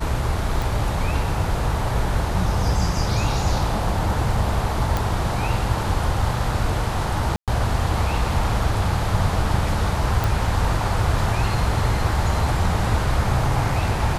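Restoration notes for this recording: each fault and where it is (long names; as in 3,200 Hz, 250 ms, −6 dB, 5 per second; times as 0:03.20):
0:00.62: click
0:04.97: click
0:07.36–0:07.48: drop-out 117 ms
0:10.24: click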